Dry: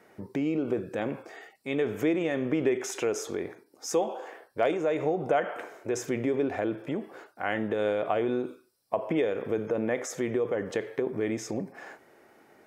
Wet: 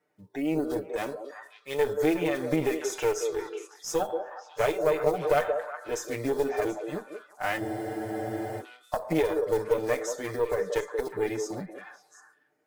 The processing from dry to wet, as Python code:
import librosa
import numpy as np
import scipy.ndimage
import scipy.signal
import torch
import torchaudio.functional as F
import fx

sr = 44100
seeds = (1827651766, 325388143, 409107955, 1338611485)

y = fx.block_float(x, sr, bits=5)
y = fx.noise_reduce_blind(y, sr, reduce_db=18)
y = y + 0.92 * np.pad(y, (int(6.7 * sr / 1000.0), 0))[:len(y)]
y = fx.cheby_harmonics(y, sr, harmonics=(4, 8), levels_db=(-19, -33), full_scale_db=-9.5)
y = fx.echo_stepped(y, sr, ms=182, hz=460.0, octaves=1.4, feedback_pct=70, wet_db=-4.0)
y = fx.spec_freeze(y, sr, seeds[0], at_s=7.62, hold_s=0.98)
y = F.gain(torch.from_numpy(y), -2.5).numpy()